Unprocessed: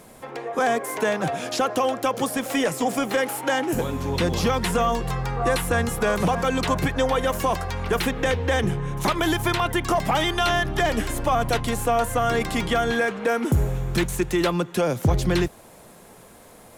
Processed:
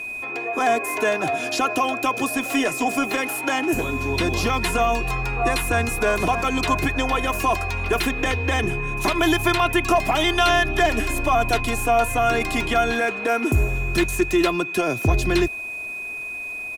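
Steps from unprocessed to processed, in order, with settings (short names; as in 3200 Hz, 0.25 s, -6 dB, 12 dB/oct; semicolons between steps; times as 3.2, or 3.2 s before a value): whine 2500 Hz -31 dBFS; comb 2.9 ms, depth 59%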